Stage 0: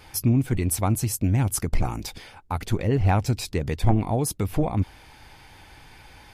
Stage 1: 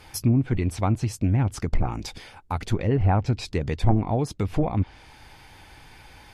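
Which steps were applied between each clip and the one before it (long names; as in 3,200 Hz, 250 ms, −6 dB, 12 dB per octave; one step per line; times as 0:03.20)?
treble cut that deepens with the level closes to 1,500 Hz, closed at −15 dBFS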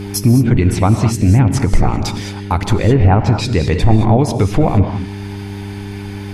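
hum with harmonics 100 Hz, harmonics 4, −37 dBFS −3 dB per octave
reverb whose tail is shaped and stops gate 240 ms rising, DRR 6.5 dB
boost into a limiter +12.5 dB
level −1 dB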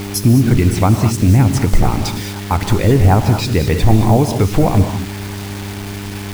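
bit reduction 5 bits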